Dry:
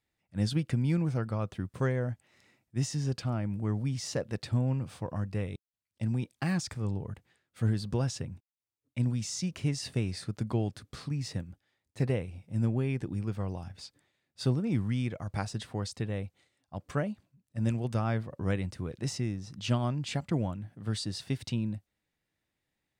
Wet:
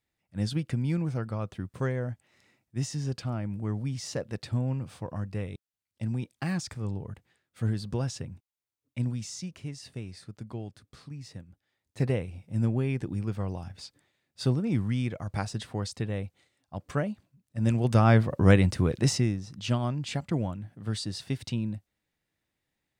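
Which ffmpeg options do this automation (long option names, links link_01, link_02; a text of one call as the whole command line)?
ffmpeg -i in.wav -af "volume=19dB,afade=type=out:start_time=9:duration=0.66:silence=0.421697,afade=type=in:start_time=11.48:duration=0.54:silence=0.316228,afade=type=in:start_time=17.6:duration=0.6:silence=0.334965,afade=type=out:start_time=18.87:duration=0.6:silence=0.298538" out.wav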